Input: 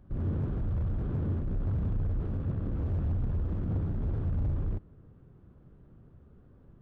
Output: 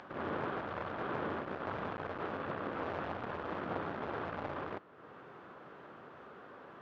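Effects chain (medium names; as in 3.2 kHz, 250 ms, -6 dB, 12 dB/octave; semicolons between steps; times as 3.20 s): high-pass 910 Hz 12 dB/octave; upward compressor, threshold -60 dBFS; distance through air 200 m; trim +17.5 dB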